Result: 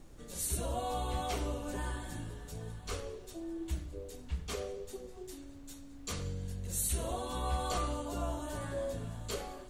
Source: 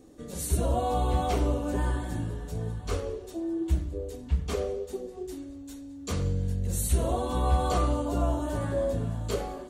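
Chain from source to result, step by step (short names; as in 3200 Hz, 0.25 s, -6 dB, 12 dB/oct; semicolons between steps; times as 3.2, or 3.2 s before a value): tilt shelf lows -5 dB, about 1100 Hz; added noise brown -46 dBFS; gain -6 dB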